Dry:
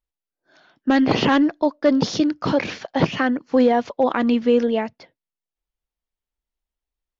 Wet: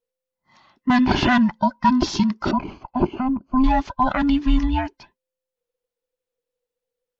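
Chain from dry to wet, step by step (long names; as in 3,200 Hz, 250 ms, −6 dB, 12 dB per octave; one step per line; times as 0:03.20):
frequency inversion band by band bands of 500 Hz
0:02.51–0:03.64: moving average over 24 samples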